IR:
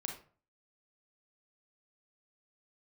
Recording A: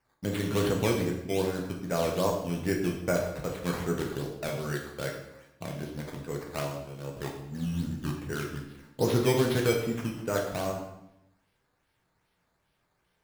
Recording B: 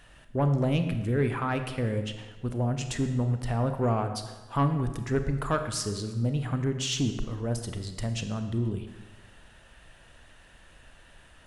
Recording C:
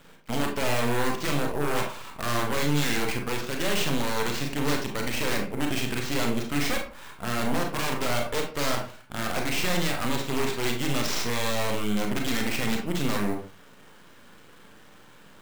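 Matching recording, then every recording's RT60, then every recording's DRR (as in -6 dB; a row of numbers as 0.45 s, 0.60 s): C; 0.90 s, 1.2 s, 0.45 s; 0.0 dB, 7.0 dB, 1.5 dB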